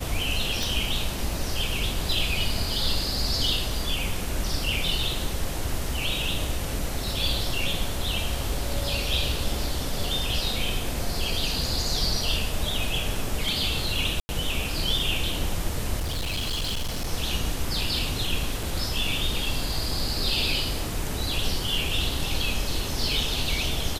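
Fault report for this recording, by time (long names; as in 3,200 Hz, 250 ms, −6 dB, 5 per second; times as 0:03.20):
0:00.63: click
0:14.20–0:14.29: drop-out 90 ms
0:15.98–0:17.11: clipping −24.5 dBFS
0:18.63: drop-out 3.9 ms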